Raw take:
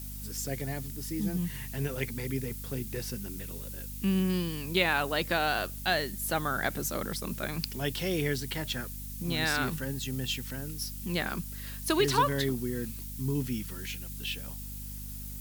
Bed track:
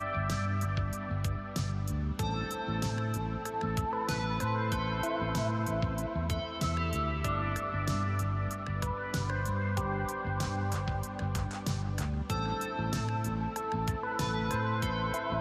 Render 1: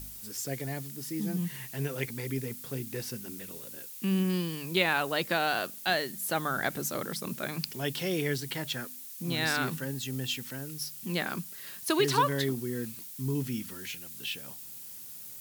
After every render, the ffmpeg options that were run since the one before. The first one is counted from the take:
-af "bandreject=f=50:t=h:w=4,bandreject=f=100:t=h:w=4,bandreject=f=150:t=h:w=4,bandreject=f=200:t=h:w=4,bandreject=f=250:t=h:w=4"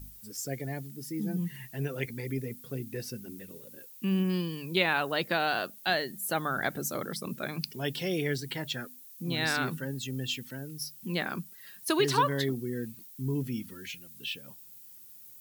-af "afftdn=nr=11:nf=-45"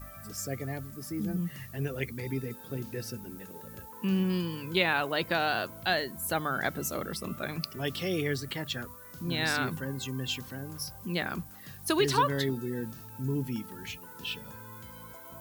-filter_complex "[1:a]volume=-17dB[a];[0:a][a]amix=inputs=2:normalize=0"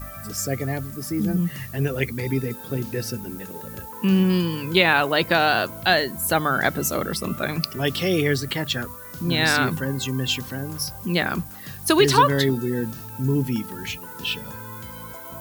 -af "volume=9.5dB,alimiter=limit=-3dB:level=0:latency=1"

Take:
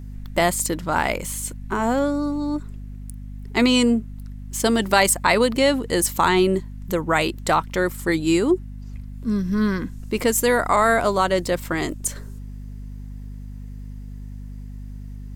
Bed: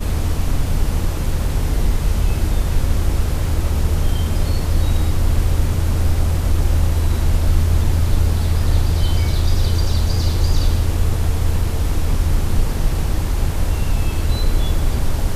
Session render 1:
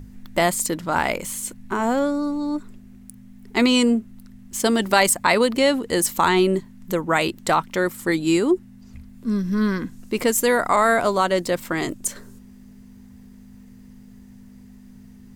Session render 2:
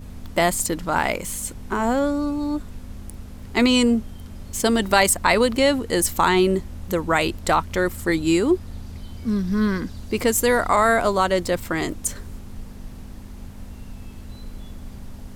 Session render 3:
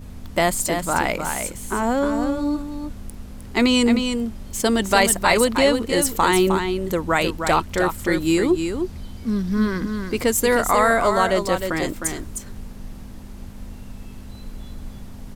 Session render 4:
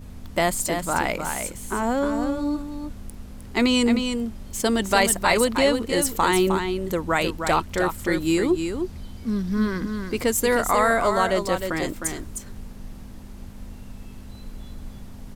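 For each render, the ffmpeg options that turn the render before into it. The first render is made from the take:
-af "bandreject=f=50:t=h:w=6,bandreject=f=100:t=h:w=6,bandreject=f=150:t=h:w=6"
-filter_complex "[1:a]volume=-20dB[a];[0:a][a]amix=inputs=2:normalize=0"
-af "aecho=1:1:309:0.473"
-af "volume=-2.5dB"

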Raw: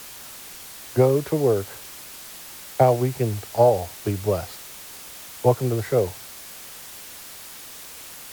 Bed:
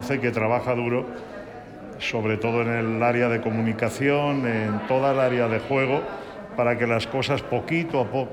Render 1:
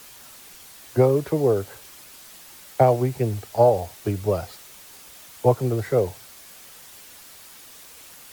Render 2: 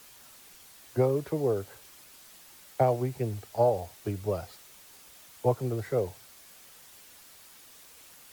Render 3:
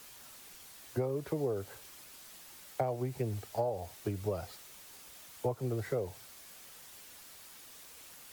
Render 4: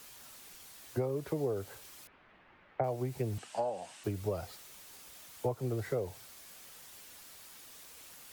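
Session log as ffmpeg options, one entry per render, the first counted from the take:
-af "afftdn=nr=6:nf=-41"
-af "volume=-7.5dB"
-af "acompressor=threshold=-30dB:ratio=5"
-filter_complex "[0:a]asettb=1/sr,asplit=3[a][b][c];[a]atrim=end=2.074[d];[b]atrim=start=2.07:end=2.84,asetpts=PTS-STARTPTS,afade=t=in:d=0.004:c=qsin,afade=t=out:st=0.766:d=0.004:c=qsin,lowpass=f=2.3k:w=0.5412,lowpass=f=2.3k:w=1.3066[e];[c]atrim=start=2.836[f];[d][e]acrossfade=d=0.004:c1=hsin:c2=qsin[g];[g][f]acrossfade=d=0.004:c1=qsin:c2=hsin,asettb=1/sr,asplit=3[h][i][j];[h]atrim=end=3.384[k];[i]atrim=start=3.38:end=4.04,asetpts=PTS-STARTPTS,afade=t=in:d=0.004:c=qsin,afade=t=out:st=0.656:d=0.004:c=qsin,highpass=f=170:w=0.5412,highpass=f=170:w=1.3066,equalizer=f=420:t=q:w=4:g=-10,equalizer=f=1k:t=q:w=4:g=4,equalizer=f=1.6k:t=q:w=4:g=5,equalizer=f=2.8k:t=q:w=4:g=8,equalizer=f=8.4k:t=q:w=4:g=8,lowpass=f=8.7k:w=0.5412,lowpass=f=8.7k:w=1.3066[l];[j]atrim=start=4.036[m];[k][l]acrossfade=d=0.004:c1=hsin:c2=qsin[n];[n][m]acrossfade=d=0.004:c1=qsin:c2=hsin"

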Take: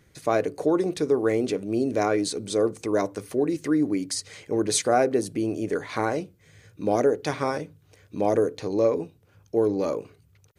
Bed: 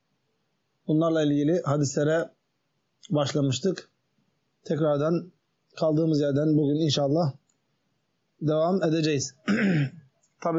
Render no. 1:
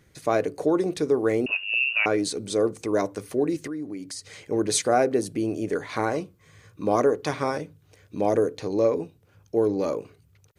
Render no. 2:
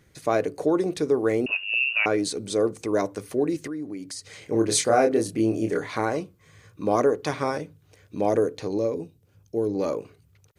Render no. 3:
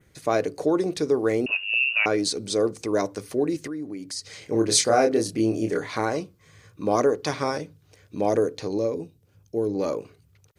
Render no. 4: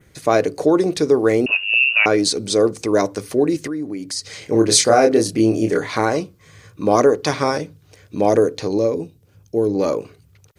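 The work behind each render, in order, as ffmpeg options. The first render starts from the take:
-filter_complex "[0:a]asettb=1/sr,asplit=3[a][b][c];[a]atrim=end=1.464[d];[b]atrim=start=1.46:end=2.06,asetpts=PTS-STARTPTS,afade=t=in:d=0.004:c=qsin,afade=t=out:st=0.596:d=0.004:c=qsin,lowpass=f=2.6k:t=q:w=0.5098,lowpass=f=2.6k:t=q:w=0.6013,lowpass=f=2.6k:t=q:w=0.9,lowpass=f=2.6k:t=q:w=2.563,afreqshift=-3000[e];[c]atrim=start=2.056[f];[d][e]acrossfade=d=0.004:c1=hsin:c2=qsin[g];[g][f]acrossfade=d=0.004:c1=qsin:c2=hsin,asettb=1/sr,asplit=3[h][i][j];[h]atrim=end=3.674[k];[i]atrim=start=3.67:end=4.4,asetpts=PTS-STARTPTS,afade=t=in:d=0.004:c=qsin,afade=t=out:st=0.726:d=0.004:c=qsin,acompressor=threshold=-38dB:ratio=2:attack=3.2:release=140:knee=1:detection=peak[l];[j]atrim=start=4.396[m];[k][l]acrossfade=d=0.004:c1=hsin:c2=qsin[n];[n][m]acrossfade=d=0.004:c1=qsin:c2=hsin,asettb=1/sr,asplit=3[o][p][q];[o]atrim=end=6.144[r];[p]atrim=start=6.14:end=7.28,asetpts=PTS-STARTPTS,afade=t=in:d=0.004:c=qsin,afade=t=out:st=1.136:d=0.004:c=qsin,equalizer=f=1.1k:w=5:g=12.5[s];[q]atrim=start=7.276[t];[r][s]acrossfade=d=0.004:c1=hsin:c2=qsin[u];[u][t]acrossfade=d=0.004:c1=qsin:c2=hsin"
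-filter_complex "[0:a]asettb=1/sr,asplit=3[a][b][c];[a]atrim=end=4.394[d];[b]atrim=start=4.39:end=5.92,asetpts=PTS-STARTPTS,afade=t=in:d=0.004:c=qsin,afade=t=out:st=1.526:d=0.004:c=qsin,asplit=2[e][f];[f]adelay=27,volume=-3.5dB[g];[e][g]amix=inputs=2:normalize=0,atrim=end_sample=67473[h];[c]atrim=start=5.916[i];[d][h]acrossfade=d=0.004:c1=hsin:c2=qsin[j];[j][i]acrossfade=d=0.004:c1=qsin:c2=hsin,asettb=1/sr,asplit=3[k][l][m];[k]atrim=end=8.784[n];[l]atrim=start=8.78:end=9.75,asetpts=PTS-STARTPTS,afade=t=in:d=0.004:c=qsin,afade=t=out:st=0.966:d=0.004:c=qsin,equalizer=f=1.3k:w=0.46:g=-9[o];[m]atrim=start=9.746[p];[n][o]acrossfade=d=0.004:c1=hsin:c2=qsin[q];[q][p]acrossfade=d=0.004:c1=qsin:c2=hsin"
-af "adynamicequalizer=threshold=0.00447:dfrequency=5000:dqfactor=1.6:tfrequency=5000:tqfactor=1.6:attack=5:release=100:ratio=0.375:range=3.5:mode=boostabove:tftype=bell"
-af "volume=7dB,alimiter=limit=-2dB:level=0:latency=1"

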